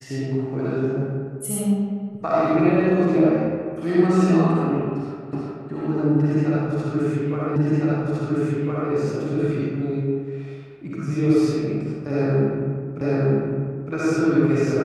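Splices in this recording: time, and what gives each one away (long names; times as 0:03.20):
0:05.33: the same again, the last 0.37 s
0:07.56: the same again, the last 1.36 s
0:13.01: the same again, the last 0.91 s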